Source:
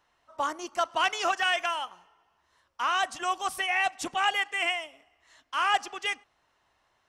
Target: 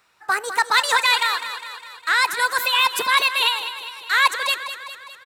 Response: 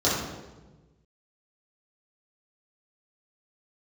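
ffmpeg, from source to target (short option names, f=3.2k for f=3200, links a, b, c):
-af "highpass=f=120:p=1,highshelf=f=11k:g=9,aecho=1:1:274|548|822|1096|1370|1644:0.282|0.161|0.0916|0.0522|0.0298|0.017,asetrate=59535,aresample=44100,volume=8.5dB"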